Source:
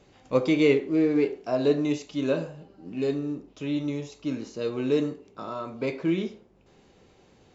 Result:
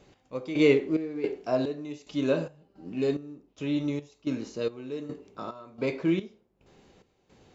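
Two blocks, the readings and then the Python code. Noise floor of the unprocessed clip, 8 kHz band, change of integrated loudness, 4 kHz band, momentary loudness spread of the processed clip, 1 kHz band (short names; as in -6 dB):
-59 dBFS, n/a, -2.5 dB, -2.0 dB, 16 LU, -3.0 dB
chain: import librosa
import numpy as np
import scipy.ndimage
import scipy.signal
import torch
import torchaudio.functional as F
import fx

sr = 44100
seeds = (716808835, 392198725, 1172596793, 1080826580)

y = fx.step_gate(x, sr, bpm=109, pattern='x...xxx..xx', floor_db=-12.0, edge_ms=4.5)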